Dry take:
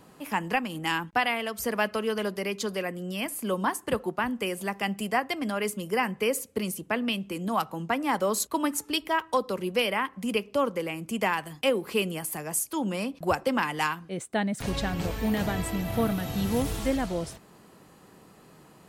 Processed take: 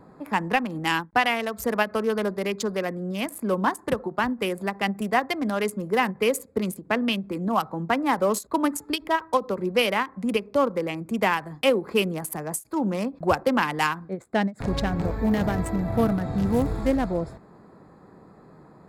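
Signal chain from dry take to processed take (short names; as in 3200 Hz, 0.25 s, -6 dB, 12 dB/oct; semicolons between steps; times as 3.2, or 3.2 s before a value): Wiener smoothing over 15 samples; ending taper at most 320 dB/s; gain +4.5 dB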